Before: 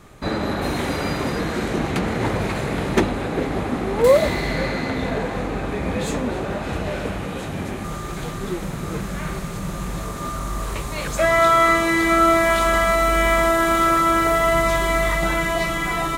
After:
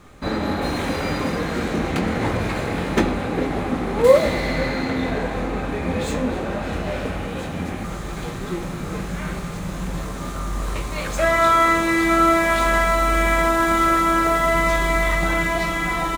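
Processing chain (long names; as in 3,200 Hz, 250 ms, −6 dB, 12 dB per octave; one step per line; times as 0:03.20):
running median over 3 samples
double-tracking delay 23 ms −10 dB
convolution reverb RT60 1.3 s, pre-delay 4 ms, DRR 7 dB
level −1 dB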